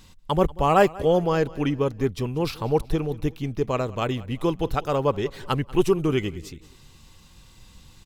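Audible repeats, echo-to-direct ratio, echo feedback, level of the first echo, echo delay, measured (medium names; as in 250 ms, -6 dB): 2, -20.5 dB, 40%, -21.0 dB, 188 ms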